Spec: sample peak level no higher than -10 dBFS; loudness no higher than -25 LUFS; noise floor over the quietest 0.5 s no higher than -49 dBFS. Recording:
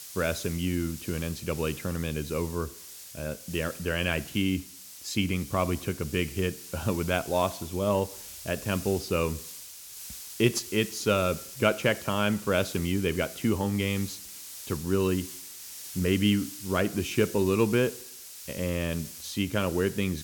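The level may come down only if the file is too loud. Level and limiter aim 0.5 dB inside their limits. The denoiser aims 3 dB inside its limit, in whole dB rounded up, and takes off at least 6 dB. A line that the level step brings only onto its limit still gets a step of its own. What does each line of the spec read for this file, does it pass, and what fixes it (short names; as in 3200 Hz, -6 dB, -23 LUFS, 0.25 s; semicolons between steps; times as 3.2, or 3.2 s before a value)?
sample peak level -9.0 dBFS: fail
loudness -29.0 LUFS: OK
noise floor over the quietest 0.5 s -45 dBFS: fail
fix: denoiser 7 dB, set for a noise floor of -45 dBFS; limiter -10.5 dBFS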